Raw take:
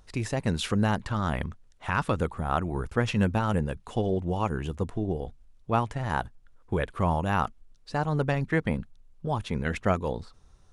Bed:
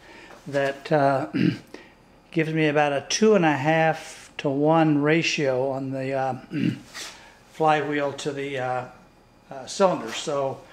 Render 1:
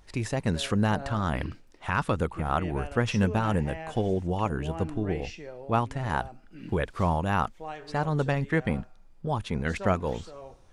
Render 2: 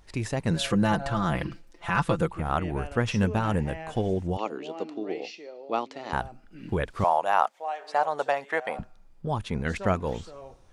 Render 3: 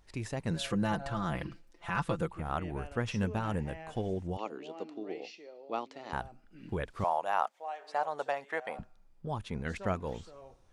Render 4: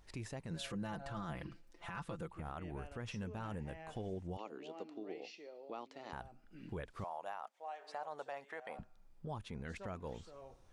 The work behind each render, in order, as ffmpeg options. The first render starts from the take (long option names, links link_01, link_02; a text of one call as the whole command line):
ffmpeg -i in.wav -i bed.wav -filter_complex "[1:a]volume=-19dB[link_01];[0:a][link_01]amix=inputs=2:normalize=0" out.wav
ffmpeg -i in.wav -filter_complex "[0:a]asettb=1/sr,asplit=3[link_01][link_02][link_03];[link_01]atrim=end=0.504[link_04];[link_02]atrim=start=0.5:end=2.32,asetpts=PTS-STARTPTS,afade=type=in:duration=0.004:curve=qsin,afade=type=out:start_time=1.816:duration=0.004:curve=qsin,aecho=1:1:5.9:0.8,atrim=end_sample=80262[link_05];[link_03]atrim=start=2.316[link_06];[link_04][link_05]acrossfade=duration=0.004:curve1=hsin:curve2=qsin[link_07];[link_07][link_06]acrossfade=duration=0.004:curve1=qsin:curve2=hsin,asettb=1/sr,asplit=3[link_08][link_09][link_10];[link_08]atrim=end=4.374[link_11];[link_09]atrim=start=4.37:end=6.13,asetpts=PTS-STARTPTS,afade=type=in:duration=0.004:curve=qsin,afade=type=out:start_time=1.756:duration=0.004:curve=qsin,highpass=frequency=280:width=0.5412,highpass=frequency=280:width=1.3066,equalizer=frequency=980:width_type=q:width=4:gain=-5,equalizer=frequency=1600:width_type=q:width=4:gain=-10,equalizer=frequency=4300:width_type=q:width=4:gain=7,lowpass=frequency=6400:width=0.5412,lowpass=frequency=6400:width=1.3066[link_12];[link_10]atrim=start=6.126[link_13];[link_11][link_12]acrossfade=duration=0.004:curve1=hsin:curve2=qsin[link_14];[link_14][link_13]acrossfade=duration=0.004:curve1=qsin:curve2=hsin,asettb=1/sr,asplit=3[link_15][link_16][link_17];[link_15]atrim=end=7.044[link_18];[link_16]atrim=start=7.04:end=8.79,asetpts=PTS-STARTPTS,afade=type=in:duration=0.004:curve=qsin,afade=type=out:start_time=1.746:duration=0.004:curve=qsin,highpass=frequency=680:width_type=q:width=2.6[link_19];[link_17]atrim=start=8.786[link_20];[link_18][link_19]acrossfade=duration=0.004:curve1=hsin:curve2=qsin[link_21];[link_21][link_20]acrossfade=duration=0.004:curve1=qsin:curve2=hsin" out.wav
ffmpeg -i in.wav -af "volume=-7.5dB" out.wav
ffmpeg -i in.wav -af "acompressor=threshold=-53dB:ratio=1.5,alimiter=level_in=10dB:limit=-24dB:level=0:latency=1:release=27,volume=-10dB" out.wav